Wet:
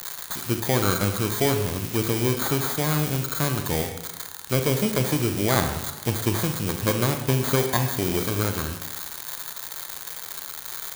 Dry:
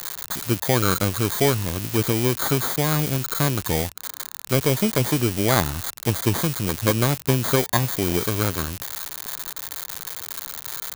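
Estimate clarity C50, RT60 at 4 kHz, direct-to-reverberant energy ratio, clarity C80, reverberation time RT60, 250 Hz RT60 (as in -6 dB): 7.0 dB, 1.1 s, 5.5 dB, 9.5 dB, 1.1 s, 1.1 s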